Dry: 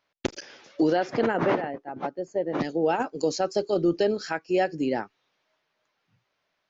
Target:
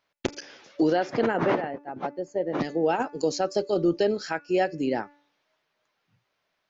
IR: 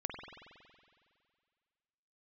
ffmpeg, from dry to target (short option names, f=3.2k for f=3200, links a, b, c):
-af "bandreject=f=289.7:t=h:w=4,bandreject=f=579.4:t=h:w=4,bandreject=f=869.1:t=h:w=4,bandreject=f=1.1588k:t=h:w=4,bandreject=f=1.4485k:t=h:w=4,bandreject=f=1.7382k:t=h:w=4,bandreject=f=2.0279k:t=h:w=4,bandreject=f=2.3176k:t=h:w=4,bandreject=f=2.6073k:t=h:w=4"